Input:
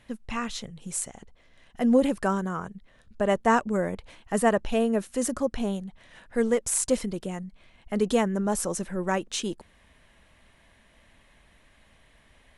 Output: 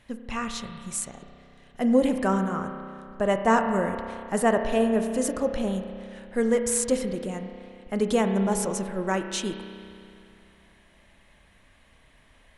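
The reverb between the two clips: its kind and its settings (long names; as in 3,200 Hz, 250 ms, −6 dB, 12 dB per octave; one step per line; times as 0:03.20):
spring reverb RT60 2.5 s, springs 31 ms, chirp 65 ms, DRR 6 dB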